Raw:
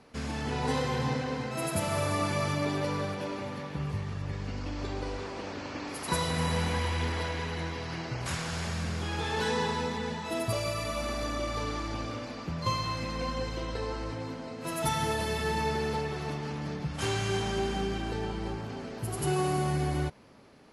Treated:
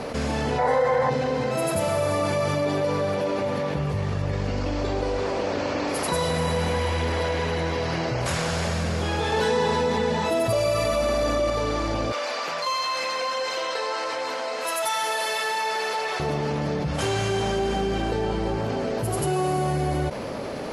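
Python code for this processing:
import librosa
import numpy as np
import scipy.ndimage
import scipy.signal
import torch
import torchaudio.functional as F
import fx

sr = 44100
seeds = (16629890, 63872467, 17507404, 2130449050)

y = fx.spec_box(x, sr, start_s=0.59, length_s=0.51, low_hz=470.0, high_hz=2300.0, gain_db=12)
y = fx.highpass(y, sr, hz=940.0, slope=12, at=(12.12, 16.2))
y = fx.edit(y, sr, fx.clip_gain(start_s=9.32, length_s=2.18, db=5.5), tone=tone)
y = fx.peak_eq(y, sr, hz=560.0, db=8.5, octaves=0.81)
y = fx.env_flatten(y, sr, amount_pct=70)
y = F.gain(torch.from_numpy(y), -7.5).numpy()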